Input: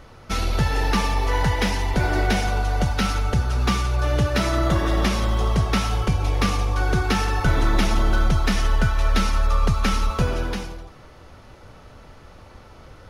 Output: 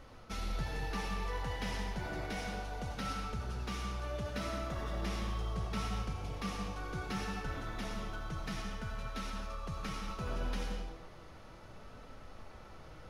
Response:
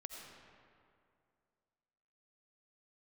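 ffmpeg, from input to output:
-filter_complex "[0:a]areverse,acompressor=threshold=-27dB:ratio=6,areverse,flanger=delay=3.7:depth=2.7:regen=68:speed=0.66:shape=sinusoidal[link_01];[1:a]atrim=start_sample=2205,afade=type=out:start_time=0.3:duration=0.01,atrim=end_sample=13671[link_02];[link_01][link_02]afir=irnorm=-1:irlink=0,volume=1.5dB"

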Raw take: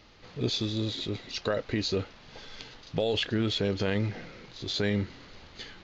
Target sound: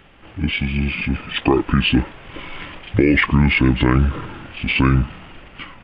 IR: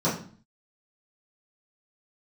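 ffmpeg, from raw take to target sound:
-af "asetrate=28595,aresample=44100,atempo=1.54221,dynaudnorm=framelen=270:gausssize=7:maxgain=5.5dB,asuperstop=centerf=4100:order=4:qfactor=5.2,volume=8dB"

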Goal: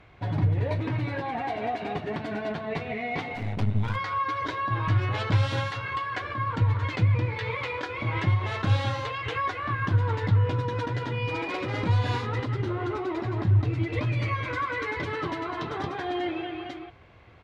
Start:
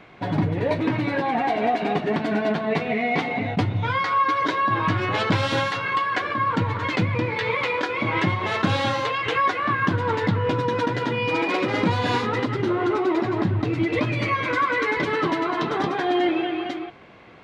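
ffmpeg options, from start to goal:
ffmpeg -i in.wav -filter_complex "[0:a]aresample=32000,aresample=44100,lowshelf=frequency=130:width_type=q:width=1.5:gain=12,asplit=3[link_01][link_02][link_03];[link_01]afade=type=out:start_time=3.34:duration=0.02[link_04];[link_02]aeval=exprs='clip(val(0),-1,0.0355)':channel_layout=same,afade=type=in:start_time=3.34:duration=0.02,afade=type=out:start_time=3.95:duration=0.02[link_05];[link_03]afade=type=in:start_time=3.95:duration=0.02[link_06];[link_04][link_05][link_06]amix=inputs=3:normalize=0,volume=-7.5dB" out.wav

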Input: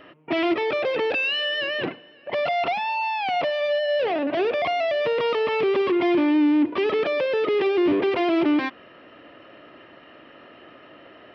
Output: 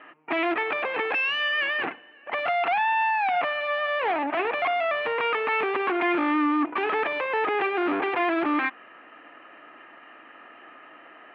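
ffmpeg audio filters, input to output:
ffmpeg -i in.wav -af "aeval=exprs='0.237*(cos(1*acos(clip(val(0)/0.237,-1,1)))-cos(1*PI/2))+0.0376*(cos(6*acos(clip(val(0)/0.237,-1,1)))-cos(6*PI/2))':channel_layout=same,highpass=300,equalizer=frequency=390:width_type=q:width=4:gain=-4,equalizer=frequency=560:width_type=q:width=4:gain=-7,equalizer=frequency=810:width_type=q:width=4:gain=6,equalizer=frequency=1200:width_type=q:width=4:gain=5,equalizer=frequency=1700:width_type=q:width=4:gain=5,equalizer=frequency=2400:width_type=q:width=4:gain=4,lowpass=frequency=2800:width=0.5412,lowpass=frequency=2800:width=1.3066,volume=-2dB" out.wav

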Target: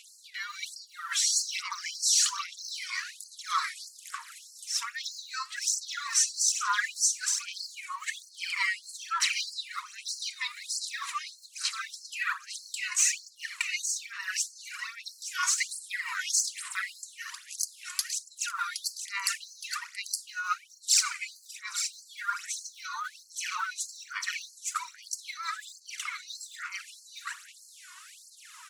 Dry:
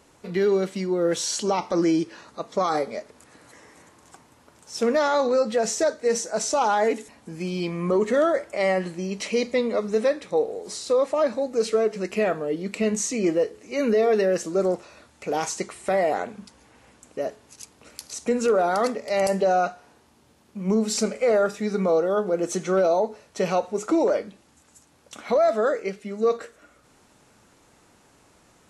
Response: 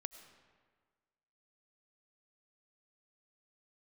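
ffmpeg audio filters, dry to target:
-af "aecho=1:1:867:0.562,aphaser=in_gain=1:out_gain=1:delay=2.8:decay=0.67:speed=1.2:type=sinusoidal,areverse,acompressor=threshold=-27dB:ratio=4,areverse,afftfilt=real='re*gte(b*sr/1024,900*pow(4200/900,0.5+0.5*sin(2*PI*1.6*pts/sr)))':imag='im*gte(b*sr/1024,900*pow(4200/900,0.5+0.5*sin(2*PI*1.6*pts/sr)))':win_size=1024:overlap=0.75,volume=8.5dB"

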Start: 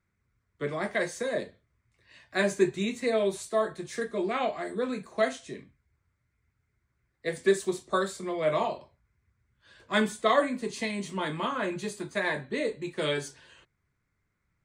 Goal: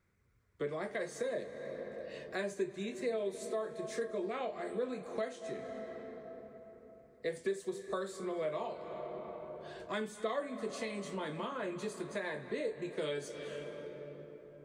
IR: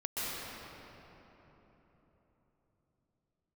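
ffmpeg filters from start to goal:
-filter_complex "[0:a]asplit=2[link_01][link_02];[1:a]atrim=start_sample=2205,adelay=77[link_03];[link_02][link_03]afir=irnorm=-1:irlink=0,volume=-20dB[link_04];[link_01][link_04]amix=inputs=2:normalize=0,acompressor=threshold=-44dB:ratio=3,equalizer=frequency=470:width_type=o:width=0.74:gain=6.5,volume=1.5dB"

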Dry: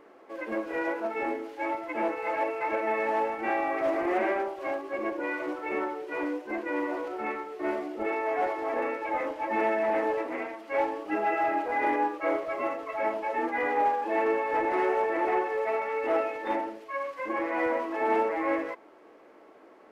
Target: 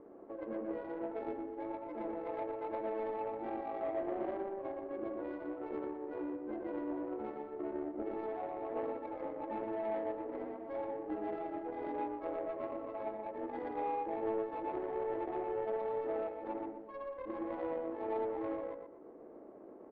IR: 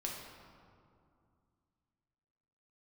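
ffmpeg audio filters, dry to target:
-filter_complex "[0:a]acompressor=threshold=-45dB:ratio=2.5,asplit=2[link_01][link_02];[link_02]adelay=120,lowpass=frequency=4200:poles=1,volume=-3dB,asplit=2[link_03][link_04];[link_04]adelay=120,lowpass=frequency=4200:poles=1,volume=0.37,asplit=2[link_05][link_06];[link_06]adelay=120,lowpass=frequency=4200:poles=1,volume=0.37,asplit=2[link_07][link_08];[link_08]adelay=120,lowpass=frequency=4200:poles=1,volume=0.37,asplit=2[link_09][link_10];[link_10]adelay=120,lowpass=frequency=4200:poles=1,volume=0.37[link_11];[link_03][link_05][link_07][link_09][link_11]amix=inputs=5:normalize=0[link_12];[link_01][link_12]amix=inputs=2:normalize=0,adynamicsmooth=sensitivity=1:basefreq=510,volume=4dB"

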